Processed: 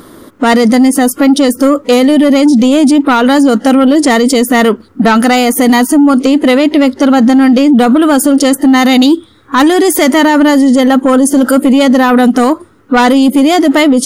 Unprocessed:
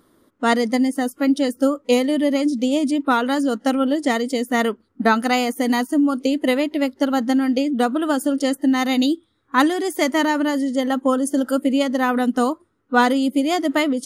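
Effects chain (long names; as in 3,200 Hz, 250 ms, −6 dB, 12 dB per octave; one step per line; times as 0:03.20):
soft clipping −13.5 dBFS, distortion −16 dB
0:05.96–0:07.54: low-pass filter 11,000 Hz 12 dB per octave
boost into a limiter +24.5 dB
level −1 dB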